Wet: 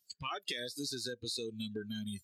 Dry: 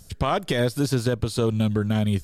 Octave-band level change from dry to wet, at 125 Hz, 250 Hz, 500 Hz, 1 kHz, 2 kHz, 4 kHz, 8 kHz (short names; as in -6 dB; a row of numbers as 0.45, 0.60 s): -25.5, -17.5, -18.0, -16.0, -12.0, -5.5, -7.5 dB